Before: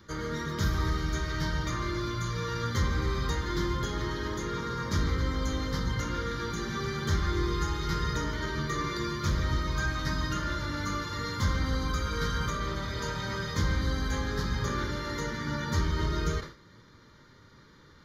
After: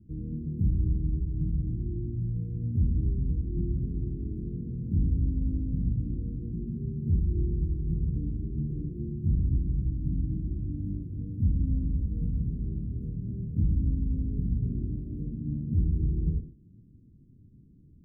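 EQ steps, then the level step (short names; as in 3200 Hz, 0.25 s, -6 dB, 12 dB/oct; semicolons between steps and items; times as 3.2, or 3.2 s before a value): inverse Chebyshev band-stop 820–5500 Hz, stop band 60 dB; tape spacing loss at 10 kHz 21 dB; +3.5 dB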